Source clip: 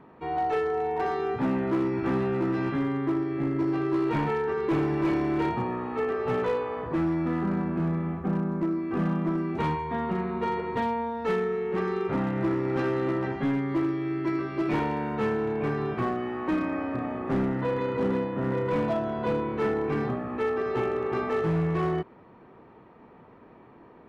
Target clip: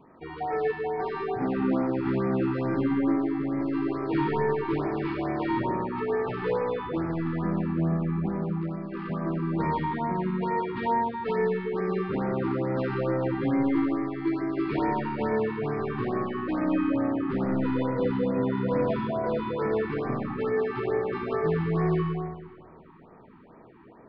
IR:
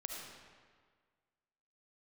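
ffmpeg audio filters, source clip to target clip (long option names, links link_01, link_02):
-filter_complex "[0:a]aresample=11025,aresample=44100,asettb=1/sr,asplit=3[link_01][link_02][link_03];[link_01]atrim=end=8.494[link_04];[link_02]atrim=start=8.49:end=9.1,asetpts=PTS-STARTPTS,afade=type=in:duration=0.004:curve=qsin,afade=type=out:start_time=0.606:duration=0.004:curve=qsin,equalizer=frequency=95:width=0.31:gain=-14[link_05];[link_03]atrim=start=9.096[link_06];[link_04][link_05]acrossfade=duration=0.004:curve1=hsin:curve2=qsin[link_07];[link_07][link_06]acrossfade=duration=0.004:curve1=qsin:curve2=hsin[link_08];[1:a]atrim=start_sample=2205[link_09];[link_08][link_09]afir=irnorm=-1:irlink=0,afftfilt=real='re*(1-between(b*sr/1024,530*pow(3600/530,0.5+0.5*sin(2*PI*2.3*pts/sr))/1.41,530*pow(3600/530,0.5+0.5*sin(2*PI*2.3*pts/sr))*1.41))':imag='im*(1-between(b*sr/1024,530*pow(3600/530,0.5+0.5*sin(2*PI*2.3*pts/sr))/1.41,530*pow(3600/530,0.5+0.5*sin(2*PI*2.3*pts/sr))*1.41))':win_size=1024:overlap=0.75,volume=1.5dB"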